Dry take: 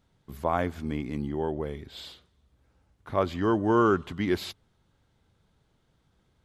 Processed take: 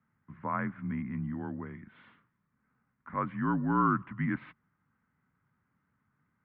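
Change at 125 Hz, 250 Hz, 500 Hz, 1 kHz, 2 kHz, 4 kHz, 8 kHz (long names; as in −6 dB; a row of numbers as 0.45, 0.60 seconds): −1.5 dB, −4.0 dB, −16.0 dB, −2.5 dB, −2.5 dB, below −20 dB, can't be measured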